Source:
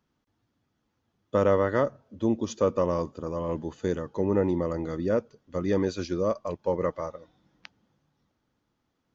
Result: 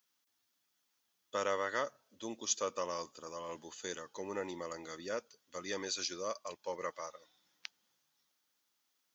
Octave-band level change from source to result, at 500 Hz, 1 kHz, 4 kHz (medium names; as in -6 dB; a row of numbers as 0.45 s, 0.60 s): -14.0 dB, -7.5 dB, +4.0 dB